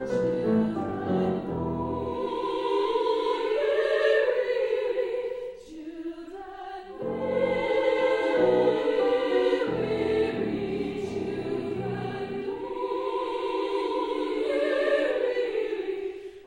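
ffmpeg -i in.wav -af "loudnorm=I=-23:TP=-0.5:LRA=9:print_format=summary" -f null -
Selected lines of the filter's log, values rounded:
Input Integrated:    -27.2 LUFS
Input True Peak:     -11.0 dBTP
Input LRA:             4.7 LU
Input Threshold:     -37.5 LUFS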